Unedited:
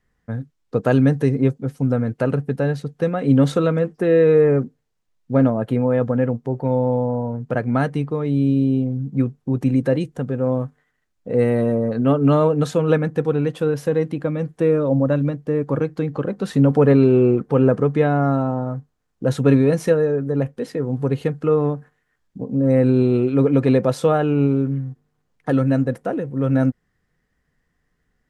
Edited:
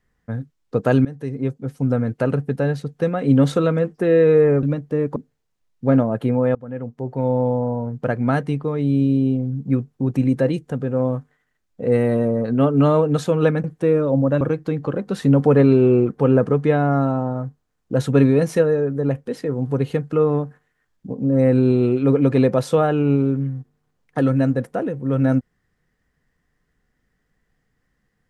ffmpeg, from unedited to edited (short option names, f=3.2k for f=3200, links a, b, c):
-filter_complex "[0:a]asplit=7[a][b][c][d][e][f][g];[a]atrim=end=1.05,asetpts=PTS-STARTPTS,afade=t=out:st=1.046:d=0.004:c=hsin:silence=0.1[h];[b]atrim=start=1.05:end=4.632,asetpts=PTS-STARTPTS,afade=t=in:d=0.86:silence=0.1[i];[c]atrim=start=15.188:end=15.722[j];[d]atrim=start=4.628:end=6.02,asetpts=PTS-STARTPTS,afade=t=out:st=1.388:d=0.004:c=hsin:silence=0.0707946[k];[e]atrim=start=6.02:end=13.112,asetpts=PTS-STARTPTS,afade=t=in:d=0.8:silence=0.0707946[l];[f]atrim=start=14.418:end=15.192[m];[g]atrim=start=15.718[n];[h][i]concat=n=2:v=0:a=1[o];[o][j]acrossfade=d=0.004:c1=hsin:c2=hsin[p];[k][l]concat=n=2:v=0:a=1[q];[p][q]acrossfade=d=0.004:c1=hsin:c2=hsin[r];[r][m]acrossfade=d=0.004:c1=hsin:c2=hsin[s];[s][n]acrossfade=d=0.004:c1=hsin:c2=hsin"